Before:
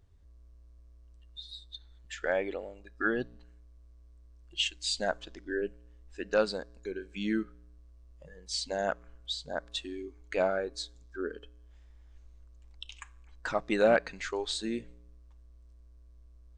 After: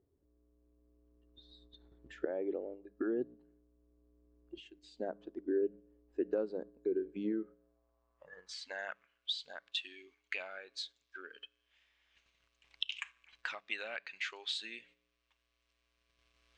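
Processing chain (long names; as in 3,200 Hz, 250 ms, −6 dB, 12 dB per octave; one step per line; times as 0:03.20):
camcorder AGC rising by 5.2 dB per second
mains-hum notches 50/100/150/200 Hz
noise gate −44 dBFS, range −6 dB
downward compressor 2 to 1, threshold −41 dBFS, peak gain reduction 12 dB
band-pass filter sweep 350 Hz → 2,700 Hz, 0:07.15–0:09.11
level +8.5 dB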